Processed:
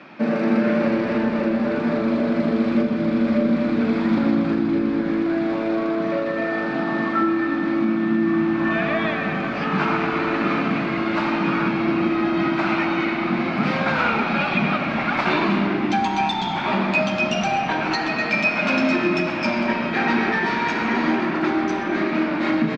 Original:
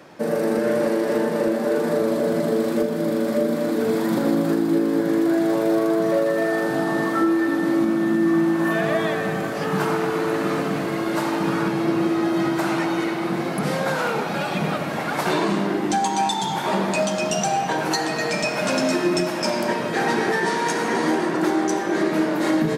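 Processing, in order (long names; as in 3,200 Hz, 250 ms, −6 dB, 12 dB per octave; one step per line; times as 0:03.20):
speech leveller 2 s
loudspeaker in its box 140–4,500 Hz, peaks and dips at 230 Hz +9 dB, 470 Hz −8 dB, 1,300 Hz +5 dB, 2,400 Hz +10 dB
on a send: echo with shifted repeats 132 ms, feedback 64%, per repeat −33 Hz, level −16 dB
on the sum: level −1 dB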